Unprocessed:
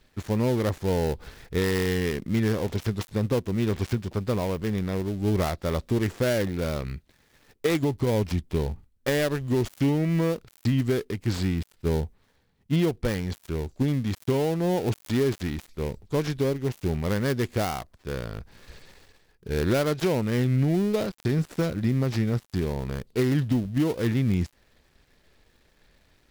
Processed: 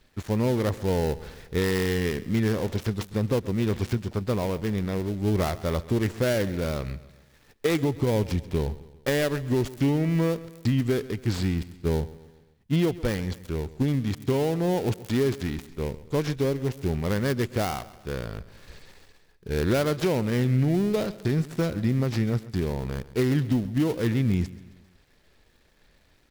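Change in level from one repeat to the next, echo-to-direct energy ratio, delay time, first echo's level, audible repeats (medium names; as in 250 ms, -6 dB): -6.0 dB, -17.0 dB, 133 ms, -18.0 dB, 3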